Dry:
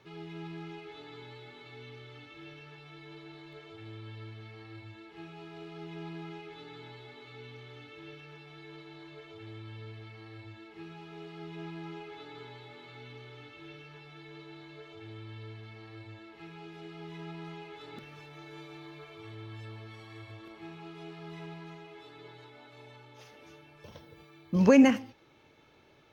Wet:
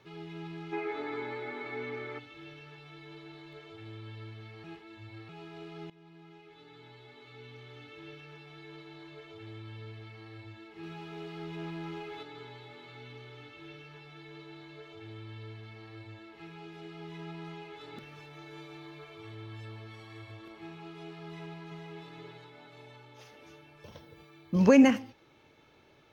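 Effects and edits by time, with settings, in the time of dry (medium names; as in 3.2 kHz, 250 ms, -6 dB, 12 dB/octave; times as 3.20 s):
0.73–2.19 s: time-frequency box 210–2500 Hz +12 dB
4.64–5.29 s: reverse
5.90–7.91 s: fade in, from -18 dB
10.83–12.23 s: waveshaping leveller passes 1
21.25–21.92 s: echo throw 460 ms, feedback 20%, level -5 dB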